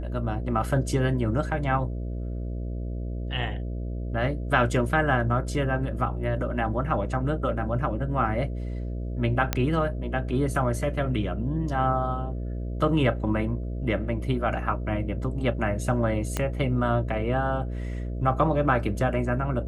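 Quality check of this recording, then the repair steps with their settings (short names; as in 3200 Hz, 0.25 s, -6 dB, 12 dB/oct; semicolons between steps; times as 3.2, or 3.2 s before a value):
buzz 60 Hz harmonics 11 -31 dBFS
9.53 pop -8 dBFS
16.37 pop -12 dBFS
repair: de-click; de-hum 60 Hz, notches 11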